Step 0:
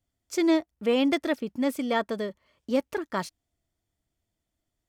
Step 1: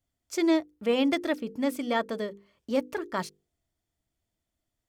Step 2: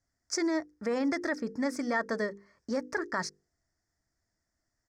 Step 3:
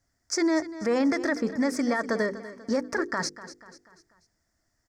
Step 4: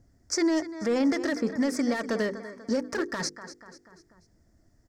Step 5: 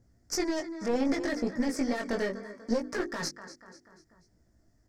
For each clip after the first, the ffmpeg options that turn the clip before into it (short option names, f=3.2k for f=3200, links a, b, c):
-af "bandreject=f=50:t=h:w=6,bandreject=f=100:t=h:w=6,bandreject=f=150:t=h:w=6,bandreject=f=200:t=h:w=6,bandreject=f=250:t=h:w=6,bandreject=f=300:t=h:w=6,bandreject=f=350:t=h:w=6,bandreject=f=400:t=h:w=6,bandreject=f=450:t=h:w=6,bandreject=f=500:t=h:w=6,volume=-1dB"
-af "alimiter=limit=-23dB:level=0:latency=1:release=55,firequalizer=gain_entry='entry(490,0);entry(1200,4);entry(1800,10);entry(2900,-19);entry(5100,10);entry(12000,-14)':delay=0.05:min_phase=1"
-af "alimiter=level_in=0.5dB:limit=-24dB:level=0:latency=1:release=41,volume=-0.5dB,aecho=1:1:244|488|732|976:0.178|0.0818|0.0376|0.0173,volume=7dB"
-filter_complex "[0:a]acrossover=split=530|2400[a][b][c];[a]acompressor=mode=upward:threshold=-48dB:ratio=2.5[d];[b]asoftclip=type=hard:threshold=-33dB[e];[d][e][c]amix=inputs=3:normalize=0"
-af "flanger=delay=16.5:depth=4.8:speed=0.68,aeval=exprs='0.126*(cos(1*acos(clip(val(0)/0.126,-1,1)))-cos(1*PI/2))+0.0398*(cos(2*acos(clip(val(0)/0.126,-1,1)))-cos(2*PI/2))':c=same"